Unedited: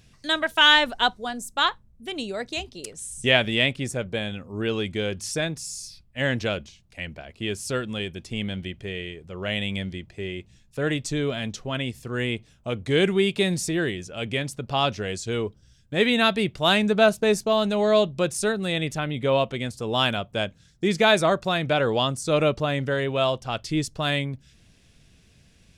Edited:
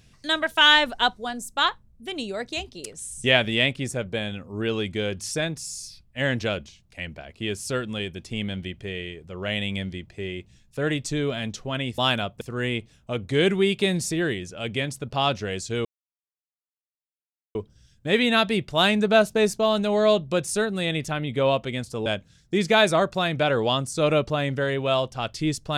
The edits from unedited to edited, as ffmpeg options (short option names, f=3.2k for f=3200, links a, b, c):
-filter_complex "[0:a]asplit=5[a][b][c][d][e];[a]atrim=end=11.982[f];[b]atrim=start=19.928:end=20.362[g];[c]atrim=start=11.978:end=15.42,asetpts=PTS-STARTPTS,afade=t=out:st=3.438:d=0.004:c=hsin,apad=pad_dur=1.7[h];[d]atrim=start=15.42:end=19.932,asetpts=PTS-STARTPTS,afade=t=in:d=0.004:c=hsin[i];[e]atrim=start=20.358[j];[f][g]acrossfade=d=0.004:c1=hsin:c2=hsin[k];[h][i]concat=n=2:v=0:a=1[l];[k][l]acrossfade=d=0.004:c1=hsin:c2=hsin[m];[m][j]acrossfade=d=0.004:c1=hsin:c2=hsin"